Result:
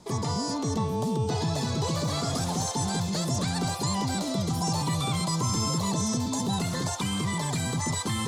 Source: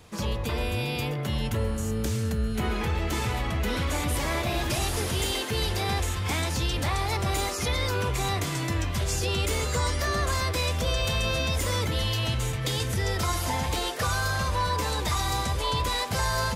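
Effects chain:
low-pass filter 4,400 Hz 24 dB per octave
flat-topped bell 1,000 Hz −10 dB 1.3 octaves
wrong playback speed 7.5 ips tape played at 15 ips

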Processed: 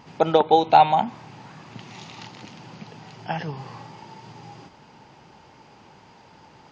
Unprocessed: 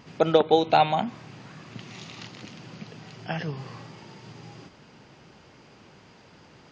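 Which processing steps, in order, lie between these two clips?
parametric band 870 Hz +11 dB 0.35 octaves

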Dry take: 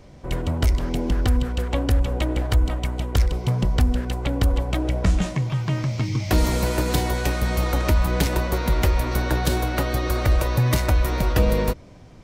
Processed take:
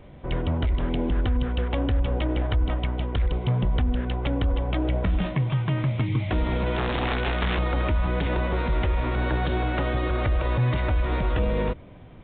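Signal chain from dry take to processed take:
brickwall limiter −16 dBFS, peak gain reduction 8 dB
0:06.76–0:07.59: wrap-around overflow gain 18 dB
downsampling to 8,000 Hz

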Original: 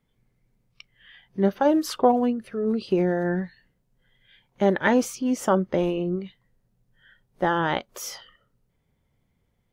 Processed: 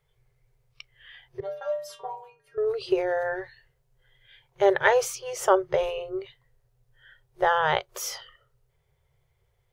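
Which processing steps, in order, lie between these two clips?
0:01.40–0:02.58: stiff-string resonator 140 Hz, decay 0.55 s, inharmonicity 0.008
brick-wall band-stop 160–360 Hz
level +2 dB

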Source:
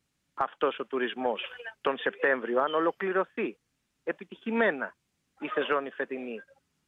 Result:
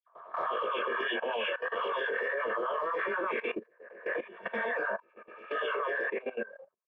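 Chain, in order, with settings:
peak hold with a rise ahead of every peak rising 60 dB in 0.73 s
noise gate with hold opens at −52 dBFS
low-pass that shuts in the quiet parts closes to 880 Hz, open at −19.5 dBFS
comb filter 1.8 ms, depth 99%
in parallel at −3 dB: downward compressor 8 to 1, threshold −35 dBFS, peak gain reduction 19.5 dB
on the sum: brickwall limiter −18 dBFS, peak gain reduction 11.5 dB
auto-filter high-pass sine 8.2 Hz 290–1,600 Hz
transient designer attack −11 dB, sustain +3 dB
hollow resonant body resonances 220/920 Hz, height 8 dB, ringing for 65 ms
all-pass dispersion lows, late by 81 ms, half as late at 2,000 Hz
chorus effect 1.6 Hz, delay 19.5 ms, depth 5.3 ms
output level in coarse steps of 17 dB
level +2 dB

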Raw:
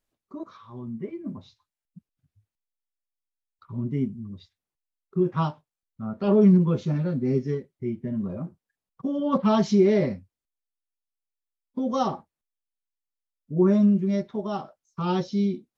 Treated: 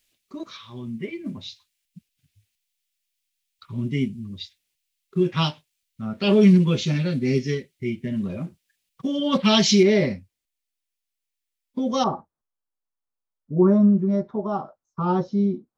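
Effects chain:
high shelf with overshoot 1,700 Hz +13.5 dB, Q 1.5, from 0:09.83 +6 dB, from 0:12.04 −10.5 dB
level +2.5 dB

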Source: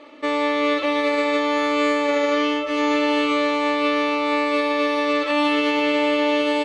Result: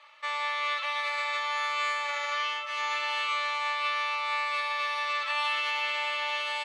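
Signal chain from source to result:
high-pass filter 940 Hz 24 dB per octave
level −4.5 dB

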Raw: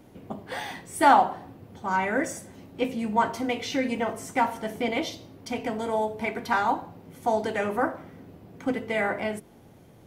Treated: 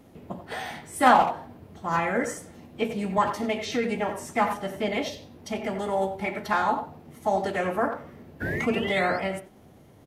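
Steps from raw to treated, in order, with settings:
far-end echo of a speakerphone 90 ms, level −9 dB
sound drawn into the spectrogram rise, 0:08.41–0:09.18, 1,600–5,000 Hz −28 dBFS
phase-vocoder pitch shift with formants kept −2 semitones

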